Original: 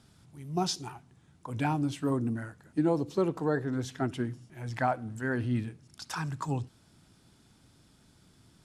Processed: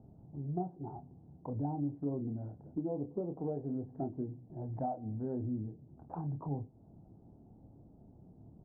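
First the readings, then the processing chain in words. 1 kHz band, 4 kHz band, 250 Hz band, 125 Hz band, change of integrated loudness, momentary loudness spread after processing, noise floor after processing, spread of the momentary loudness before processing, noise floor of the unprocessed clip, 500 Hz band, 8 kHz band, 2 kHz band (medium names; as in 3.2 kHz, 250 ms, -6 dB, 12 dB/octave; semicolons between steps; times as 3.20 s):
-9.0 dB, under -40 dB, -6.5 dB, -5.5 dB, -7.5 dB, 22 LU, -60 dBFS, 13 LU, -63 dBFS, -7.5 dB, under -35 dB, under -35 dB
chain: Chebyshev low-pass 770 Hz, order 4; compression 3:1, threshold -43 dBFS, peak gain reduction 15 dB; doubling 28 ms -7 dB; trim +4.5 dB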